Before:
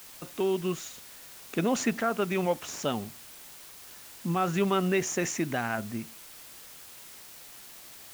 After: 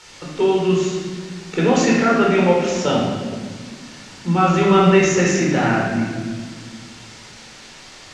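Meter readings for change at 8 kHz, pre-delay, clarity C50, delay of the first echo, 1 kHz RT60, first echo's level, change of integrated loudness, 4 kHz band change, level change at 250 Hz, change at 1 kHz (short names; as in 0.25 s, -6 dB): +7.5 dB, 19 ms, 0.5 dB, none, 1.4 s, none, +12.5 dB, +11.5 dB, +13.0 dB, +12.5 dB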